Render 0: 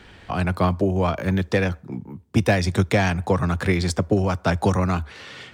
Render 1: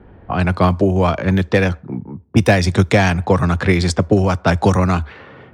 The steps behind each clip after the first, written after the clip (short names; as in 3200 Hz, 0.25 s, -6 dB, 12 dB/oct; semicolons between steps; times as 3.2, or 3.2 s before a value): low-pass opened by the level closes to 680 Hz, open at -16.5 dBFS; gain +6 dB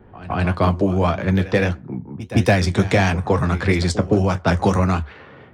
flange 1.6 Hz, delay 7.8 ms, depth 8.1 ms, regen -57%; reverse echo 0.165 s -16 dB; gain +1 dB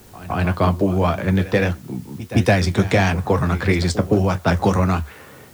added noise white -51 dBFS